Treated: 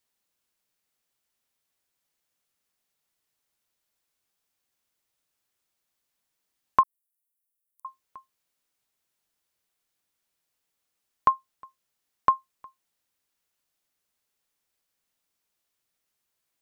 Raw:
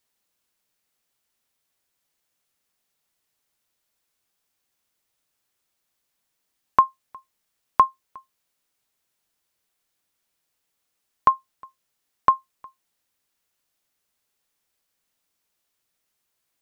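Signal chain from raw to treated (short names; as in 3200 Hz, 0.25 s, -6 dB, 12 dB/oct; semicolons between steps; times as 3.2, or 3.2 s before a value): 6.83–7.85 inverse Chebyshev high-pass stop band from 2400 Hz, stop band 70 dB; gain -3.5 dB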